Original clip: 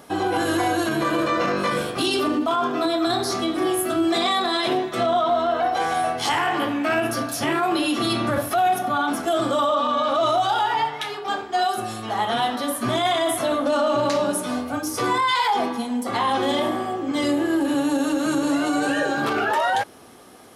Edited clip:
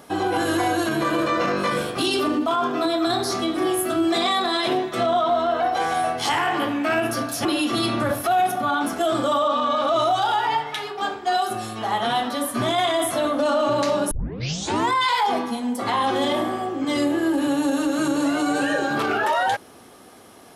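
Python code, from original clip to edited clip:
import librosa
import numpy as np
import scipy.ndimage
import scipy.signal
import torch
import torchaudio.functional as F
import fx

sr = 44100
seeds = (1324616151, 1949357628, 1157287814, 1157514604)

y = fx.edit(x, sr, fx.cut(start_s=7.45, length_s=0.27),
    fx.tape_start(start_s=14.38, length_s=0.79), tone=tone)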